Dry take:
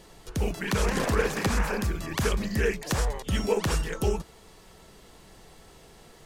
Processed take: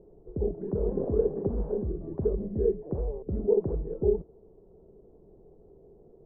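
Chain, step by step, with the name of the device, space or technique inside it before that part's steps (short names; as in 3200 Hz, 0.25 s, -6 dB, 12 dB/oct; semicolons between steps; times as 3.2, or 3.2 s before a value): under water (LPF 610 Hz 24 dB/oct; bell 400 Hz +10 dB 0.49 oct); gain -4.5 dB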